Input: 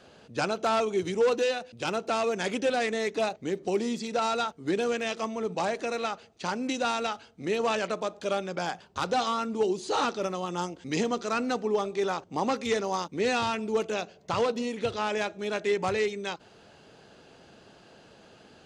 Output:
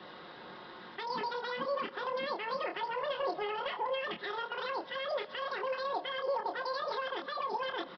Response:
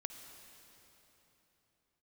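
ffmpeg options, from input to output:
-filter_complex "[0:a]areverse,highpass=f=58:p=1,equalizer=f=1k:t=o:w=0.24:g=-3,aecho=1:1:13|62:0.562|0.473,acompressor=threshold=-35dB:ratio=2.5,lowshelf=f=110:g=9,acrossover=split=320|3000[a][b][c];[b]acompressor=threshold=-45dB:ratio=2.5[d];[a][d][c]amix=inputs=3:normalize=0,asplit=2[e][f];[1:a]atrim=start_sample=2205[g];[f][g]afir=irnorm=-1:irlink=0,volume=-4.5dB[h];[e][h]amix=inputs=2:normalize=0,asetrate=103194,aresample=44100,aresample=11025,aresample=44100"

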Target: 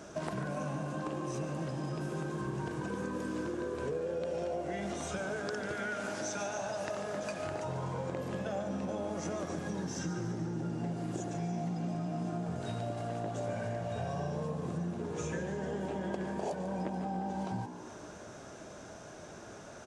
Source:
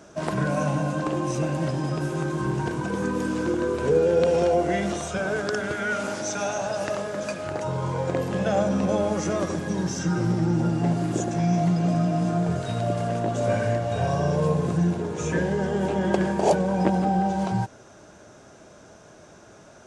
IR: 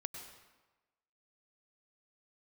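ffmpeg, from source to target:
-filter_complex "[0:a]acompressor=threshold=-35dB:ratio=6,asplit=8[a][b][c][d][e][f][g][h];[b]adelay=144,afreqshift=59,volume=-11dB[i];[c]adelay=288,afreqshift=118,volume=-15.6dB[j];[d]adelay=432,afreqshift=177,volume=-20.2dB[k];[e]adelay=576,afreqshift=236,volume=-24.7dB[l];[f]adelay=720,afreqshift=295,volume=-29.3dB[m];[g]adelay=864,afreqshift=354,volume=-33.9dB[n];[h]adelay=1008,afreqshift=413,volume=-38.5dB[o];[a][i][j][k][l][m][n][o]amix=inputs=8:normalize=0"

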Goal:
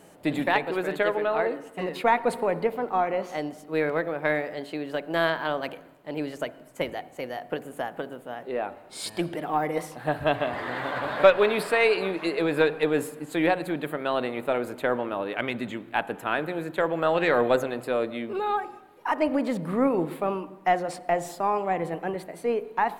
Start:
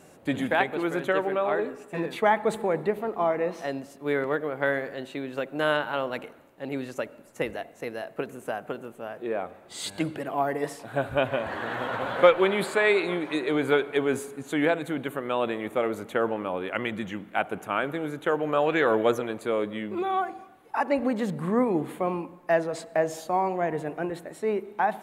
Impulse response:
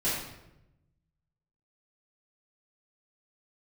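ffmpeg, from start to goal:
-filter_complex "[0:a]aeval=exprs='0.668*(cos(1*acos(clip(val(0)/0.668,-1,1)))-cos(1*PI/2))+0.0119*(cos(6*acos(clip(val(0)/0.668,-1,1)))-cos(6*PI/2))':c=same,asplit=2[a][b];[1:a]atrim=start_sample=2205,lowpass=1.2k[c];[b][c]afir=irnorm=-1:irlink=0,volume=-23dB[d];[a][d]amix=inputs=2:normalize=0,asetrate=48000,aresample=44100"

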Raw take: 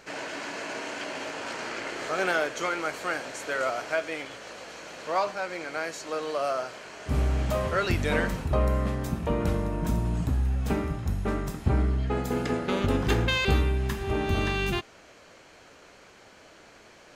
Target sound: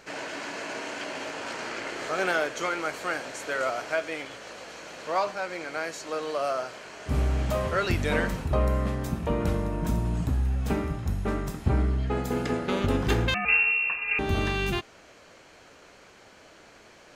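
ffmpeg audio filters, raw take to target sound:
-filter_complex "[0:a]asettb=1/sr,asplit=3[a][b][c];[a]atrim=end=13.344[d];[b]atrim=start=13.34:end=14.19,asetpts=PTS-STARTPTS,afade=t=in:d=0.004:c=qsin,afade=t=out:st=0.846:d=0.004:c=qsin,lowpass=f=2.4k:t=q:w=0.5098,lowpass=f=2.4k:t=q:w=0.6013,lowpass=f=2.4k:t=q:w=0.9,lowpass=f=2.4k:t=q:w=2.563,afreqshift=-2800[e];[c]atrim=start=14.186[f];[d][e]acrossfade=d=0.004:c1=hsin:c2=qsin[g];[g][f]acrossfade=d=0.004:c1=qsin:c2=hsin"

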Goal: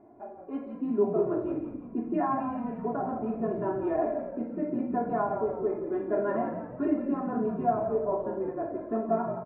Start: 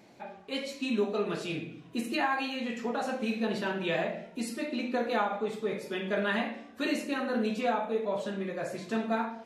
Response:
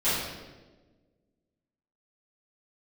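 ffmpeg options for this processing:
-filter_complex "[0:a]lowpass=f=1.1k:w=0.5412,lowpass=f=1.1k:w=1.3066,aecho=1:1:2.9:0.96,asplit=2[a][b];[b]asplit=5[c][d][e][f][g];[c]adelay=172,afreqshift=-49,volume=-8dB[h];[d]adelay=344,afreqshift=-98,volume=-14.9dB[i];[e]adelay=516,afreqshift=-147,volume=-21.9dB[j];[f]adelay=688,afreqshift=-196,volume=-28.8dB[k];[g]adelay=860,afreqshift=-245,volume=-35.7dB[l];[h][i][j][k][l]amix=inputs=5:normalize=0[m];[a][m]amix=inputs=2:normalize=0"

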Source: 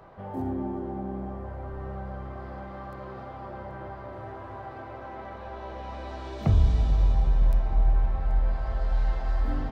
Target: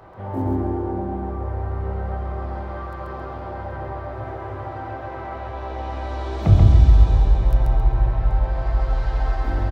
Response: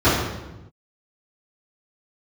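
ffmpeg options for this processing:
-filter_complex "[0:a]asplit=2[a][b];[b]asetrate=52444,aresample=44100,atempo=0.840896,volume=-12dB[c];[a][c]amix=inputs=2:normalize=0,aecho=1:1:135|270|405|540|675:0.708|0.283|0.113|0.0453|0.0181,asplit=2[d][e];[1:a]atrim=start_sample=2205,afade=t=out:st=0.16:d=0.01,atrim=end_sample=7497[f];[e][f]afir=irnorm=-1:irlink=0,volume=-30.5dB[g];[d][g]amix=inputs=2:normalize=0,volume=3.5dB"

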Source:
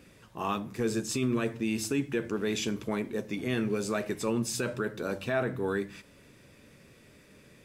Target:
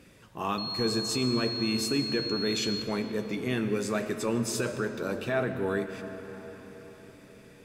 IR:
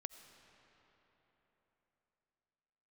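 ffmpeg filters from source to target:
-filter_complex "[0:a]asettb=1/sr,asplit=3[a][b][c];[a]atrim=end=0.584[d];[b]atrim=start=0.58:end=2.82,asetpts=PTS-STARTPTS,afade=t=in:d=0.004:c=qsin,afade=t=out:st=2.236:d=0.004:c=qsin,aeval=exprs='val(0)+0.02*sin(2*PI*4300*n/s)':c=same[e];[c]atrim=start=2.816[f];[d][e]acrossfade=d=0.004:c1=hsin:c2=qsin[g];[g][f]acrossfade=d=0.004:c1=qsin:c2=hsin[h];[1:a]atrim=start_sample=2205,asetrate=35280,aresample=44100[i];[h][i]afir=irnorm=-1:irlink=0,volume=4dB"

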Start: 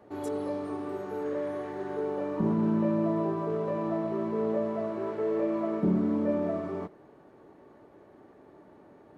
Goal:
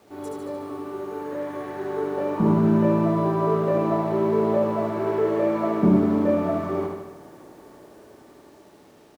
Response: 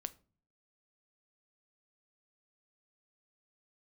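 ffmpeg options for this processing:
-filter_complex "[0:a]bandreject=f=50.3:t=h:w=4,bandreject=f=100.6:t=h:w=4,bandreject=f=150.9:t=h:w=4,bandreject=f=201.2:t=h:w=4,bandreject=f=251.5:t=h:w=4,bandreject=f=301.8:t=h:w=4,bandreject=f=352.1:t=h:w=4,bandreject=f=402.4:t=h:w=4,bandreject=f=452.7:t=h:w=4,bandreject=f=503:t=h:w=4,bandreject=f=553.3:t=h:w=4,bandreject=f=603.6:t=h:w=4,bandreject=f=653.9:t=h:w=4,bandreject=f=704.2:t=h:w=4,bandreject=f=754.5:t=h:w=4,bandreject=f=804.8:t=h:w=4,bandreject=f=855.1:t=h:w=4,bandreject=f=905.4:t=h:w=4,bandreject=f=955.7:t=h:w=4,bandreject=f=1.006k:t=h:w=4,dynaudnorm=f=410:g=9:m=8dB,acrusher=bits=9:mix=0:aa=0.000001,asplit=2[a][b];[b]aecho=0:1:74|148|222|296|370|444|518|592:0.631|0.372|0.22|0.13|0.0765|0.0451|0.0266|0.0157[c];[a][c]amix=inputs=2:normalize=0"

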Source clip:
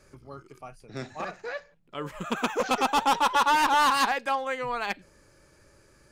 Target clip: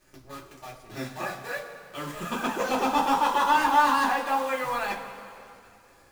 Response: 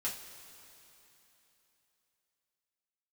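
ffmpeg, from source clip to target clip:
-filter_complex "[0:a]acrossover=split=1300[a][b];[b]alimiter=level_in=2dB:limit=-24dB:level=0:latency=1:release=289,volume=-2dB[c];[a][c]amix=inputs=2:normalize=0,acrusher=bits=8:dc=4:mix=0:aa=0.000001[d];[1:a]atrim=start_sample=2205,asetrate=57330,aresample=44100[e];[d][e]afir=irnorm=-1:irlink=0,volume=3dB"

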